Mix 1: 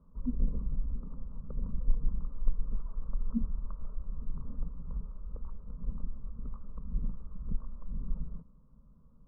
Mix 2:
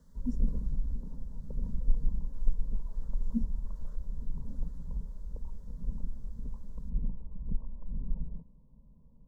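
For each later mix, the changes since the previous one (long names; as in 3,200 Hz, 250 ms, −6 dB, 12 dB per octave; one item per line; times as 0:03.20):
background: add Butterworth low-pass 1,000 Hz 72 dB per octave
master: remove elliptic low-pass filter 1,200 Hz, stop band 50 dB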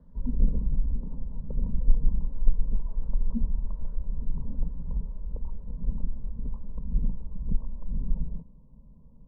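speech: add high-frequency loss of the air 430 metres
background +6.0 dB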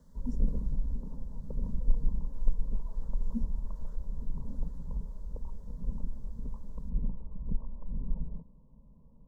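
speech: remove high-frequency loss of the air 430 metres
master: add low-shelf EQ 320 Hz −5.5 dB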